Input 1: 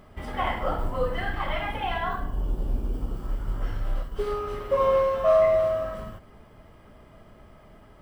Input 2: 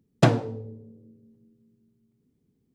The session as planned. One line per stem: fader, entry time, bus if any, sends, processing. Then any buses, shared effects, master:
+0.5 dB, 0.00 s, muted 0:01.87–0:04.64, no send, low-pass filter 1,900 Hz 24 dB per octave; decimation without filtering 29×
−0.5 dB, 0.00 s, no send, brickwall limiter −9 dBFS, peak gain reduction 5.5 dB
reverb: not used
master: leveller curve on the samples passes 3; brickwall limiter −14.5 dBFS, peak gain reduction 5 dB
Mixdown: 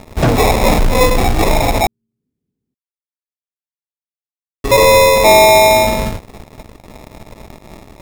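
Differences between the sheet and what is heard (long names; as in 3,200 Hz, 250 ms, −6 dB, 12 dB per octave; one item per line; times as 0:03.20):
stem 1 +0.5 dB → +7.5 dB
master: missing brickwall limiter −14.5 dBFS, peak gain reduction 5 dB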